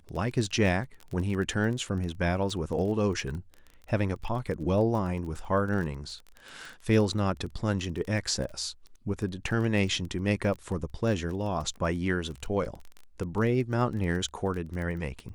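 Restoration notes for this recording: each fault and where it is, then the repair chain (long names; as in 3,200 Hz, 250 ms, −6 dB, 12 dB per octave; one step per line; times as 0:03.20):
surface crackle 20 per second −34 dBFS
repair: click removal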